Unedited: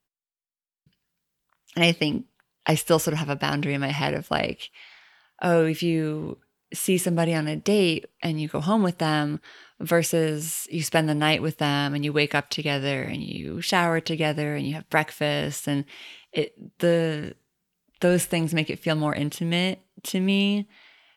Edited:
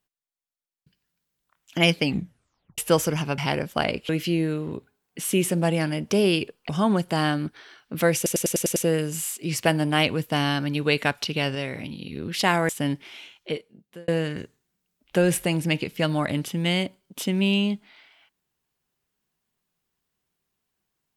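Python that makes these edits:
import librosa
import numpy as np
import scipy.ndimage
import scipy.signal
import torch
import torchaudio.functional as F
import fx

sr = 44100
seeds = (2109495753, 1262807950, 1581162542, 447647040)

y = fx.edit(x, sr, fx.tape_stop(start_s=2.03, length_s=0.75),
    fx.cut(start_s=3.38, length_s=0.55),
    fx.cut(start_s=4.64, length_s=1.0),
    fx.cut(start_s=8.24, length_s=0.34),
    fx.stutter(start_s=10.05, slice_s=0.1, count=7),
    fx.clip_gain(start_s=12.84, length_s=0.57, db=-4.0),
    fx.cut(start_s=13.98, length_s=1.58),
    fx.fade_out_span(start_s=16.07, length_s=0.88), tone=tone)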